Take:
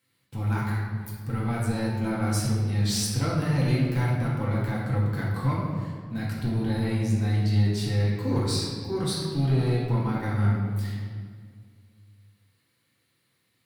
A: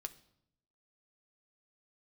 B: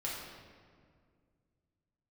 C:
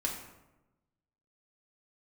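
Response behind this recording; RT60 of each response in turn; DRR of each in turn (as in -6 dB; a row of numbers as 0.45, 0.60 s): B; 0.75, 2.0, 1.0 s; 7.5, -6.0, -2.0 dB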